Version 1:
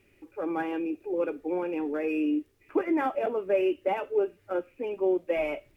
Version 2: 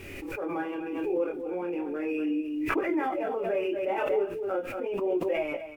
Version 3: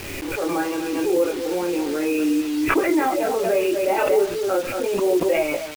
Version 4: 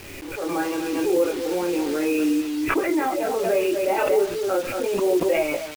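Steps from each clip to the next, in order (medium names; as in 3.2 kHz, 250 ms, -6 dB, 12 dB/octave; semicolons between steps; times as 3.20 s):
chorus voices 2, 0.36 Hz, delay 24 ms, depth 4.9 ms; delay 235 ms -10.5 dB; swell ahead of each attack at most 29 dB/s
bit crusher 7-bit; trim +8.5 dB
level rider gain up to 7 dB; trim -7 dB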